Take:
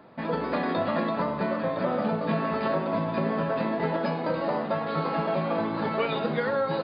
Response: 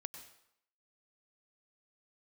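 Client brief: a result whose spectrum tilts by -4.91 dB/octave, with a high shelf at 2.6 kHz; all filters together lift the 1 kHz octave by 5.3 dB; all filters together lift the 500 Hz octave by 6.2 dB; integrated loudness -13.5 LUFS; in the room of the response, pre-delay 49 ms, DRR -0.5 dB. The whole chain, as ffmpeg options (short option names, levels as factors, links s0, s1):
-filter_complex "[0:a]equalizer=f=500:t=o:g=6,equalizer=f=1000:t=o:g=4,highshelf=f=2600:g=5.5,asplit=2[s0][s1];[1:a]atrim=start_sample=2205,adelay=49[s2];[s1][s2]afir=irnorm=-1:irlink=0,volume=1.58[s3];[s0][s3]amix=inputs=2:normalize=0,volume=2"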